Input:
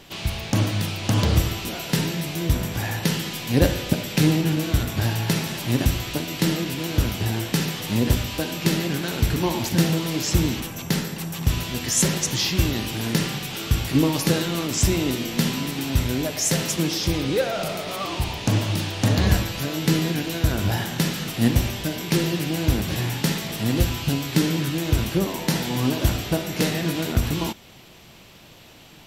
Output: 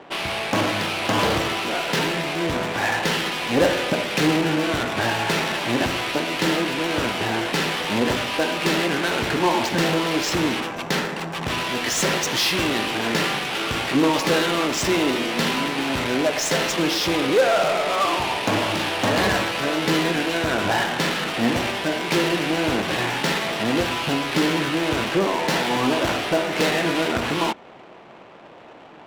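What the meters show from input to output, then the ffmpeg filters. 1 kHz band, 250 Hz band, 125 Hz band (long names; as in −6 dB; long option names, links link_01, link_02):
+9.5 dB, 0.0 dB, −8.5 dB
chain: -filter_complex "[0:a]asplit=2[link_01][link_02];[link_02]highpass=frequency=720:poles=1,volume=22dB,asoftclip=type=tanh:threshold=-4.5dB[link_03];[link_01][link_03]amix=inputs=2:normalize=0,lowpass=frequency=1100:poles=1,volume=-6dB,aemphasis=mode=production:type=bsi,adynamicsmooth=sensitivity=2.5:basefreq=920"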